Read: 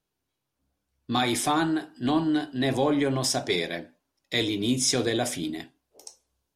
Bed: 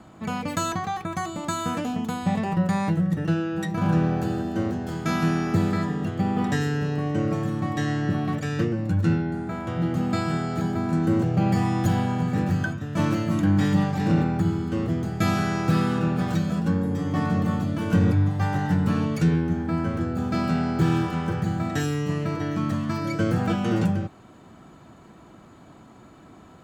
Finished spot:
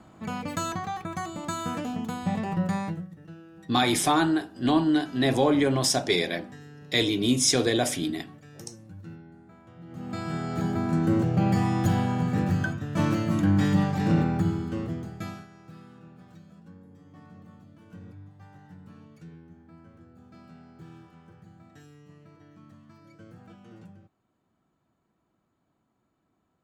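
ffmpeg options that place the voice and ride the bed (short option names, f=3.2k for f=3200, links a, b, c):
-filter_complex "[0:a]adelay=2600,volume=2dB[a];[1:a]volume=16dB,afade=t=out:st=2.74:d=0.35:silence=0.133352,afade=t=in:st=9.86:d=0.83:silence=0.1,afade=t=out:st=14.36:d=1.11:silence=0.0595662[b];[a][b]amix=inputs=2:normalize=0"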